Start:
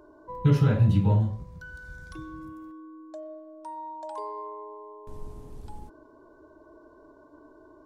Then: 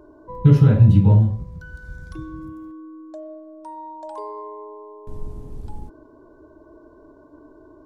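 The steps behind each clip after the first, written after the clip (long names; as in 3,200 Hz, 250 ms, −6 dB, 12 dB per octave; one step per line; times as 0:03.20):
low-shelf EQ 490 Hz +9 dB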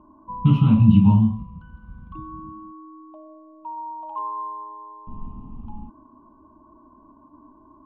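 drawn EQ curve 150 Hz 0 dB, 220 Hz +13 dB, 460 Hz −16 dB, 1,100 Hz +14 dB, 1,700 Hz −16 dB, 2,800 Hz +14 dB, 5,200 Hz −14 dB
low-pass that shuts in the quiet parts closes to 1,200 Hz, open at −7.5 dBFS
level −4.5 dB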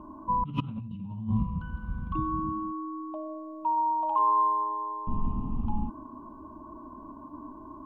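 compressor whose output falls as the input rises −29 dBFS, ratio −1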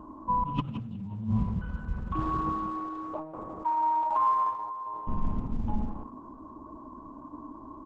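single-tap delay 170 ms −10 dB
Opus 12 kbit/s 48,000 Hz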